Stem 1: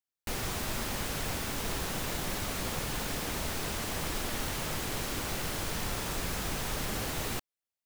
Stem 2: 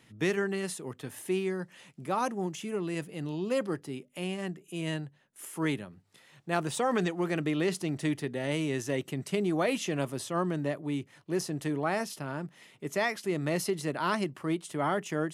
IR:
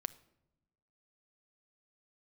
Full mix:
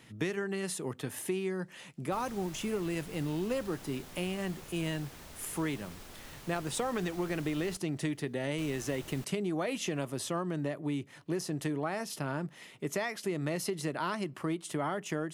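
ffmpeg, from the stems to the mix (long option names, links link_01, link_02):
-filter_complex "[0:a]adelay=1850,volume=-15.5dB,asplit=3[link_01][link_02][link_03];[link_01]atrim=end=7.77,asetpts=PTS-STARTPTS,afade=type=out:start_time=7.766:duration=0.004:curve=hsin[link_04];[link_02]atrim=start=7.77:end=8.58,asetpts=PTS-STARTPTS,volume=0[link_05];[link_03]atrim=start=8.58,asetpts=PTS-STARTPTS,afade=type=in:duration=0.004:curve=hsin[link_06];[link_04][link_05][link_06]concat=n=3:v=0:a=1,asplit=2[link_07][link_08];[link_08]volume=-22dB[link_09];[1:a]acompressor=threshold=-34dB:ratio=6,volume=2.5dB,asplit=2[link_10][link_11];[link_11]volume=-14dB[link_12];[2:a]atrim=start_sample=2205[link_13];[link_12][link_13]afir=irnorm=-1:irlink=0[link_14];[link_09]aecho=0:1:1155:1[link_15];[link_07][link_10][link_14][link_15]amix=inputs=4:normalize=0"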